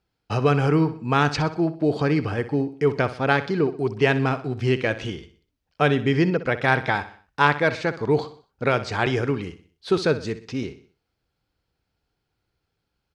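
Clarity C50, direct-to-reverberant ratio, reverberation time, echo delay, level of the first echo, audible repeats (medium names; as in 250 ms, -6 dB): no reverb, no reverb, no reverb, 62 ms, -14.0 dB, 3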